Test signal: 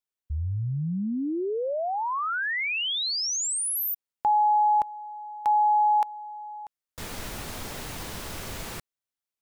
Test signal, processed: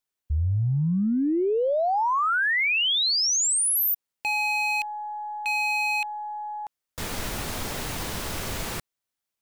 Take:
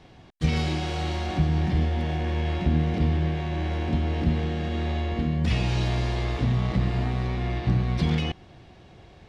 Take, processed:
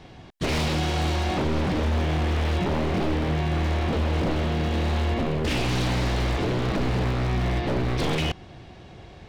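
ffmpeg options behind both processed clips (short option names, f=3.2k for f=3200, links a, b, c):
-af "aeval=exprs='0.0631*(abs(mod(val(0)/0.0631+3,4)-2)-1)':c=same,aeval=exprs='0.0668*(cos(1*acos(clip(val(0)/0.0668,-1,1)))-cos(1*PI/2))+0.000473*(cos(8*acos(clip(val(0)/0.0668,-1,1)))-cos(8*PI/2))':c=same,volume=5dB"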